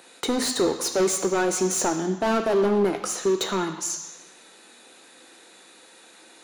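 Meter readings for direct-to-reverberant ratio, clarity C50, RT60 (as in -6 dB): 6.0 dB, 9.0 dB, 1.1 s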